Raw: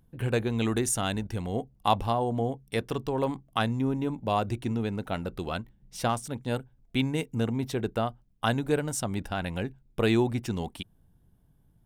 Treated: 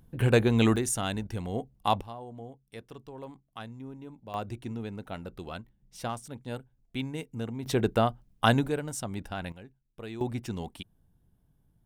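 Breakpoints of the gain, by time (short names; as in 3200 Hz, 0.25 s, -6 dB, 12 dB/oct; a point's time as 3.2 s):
+5 dB
from 0.76 s -2 dB
from 2.01 s -15 dB
from 4.34 s -7 dB
from 7.66 s +4 dB
from 8.68 s -4.5 dB
from 9.52 s -16.5 dB
from 10.21 s -4 dB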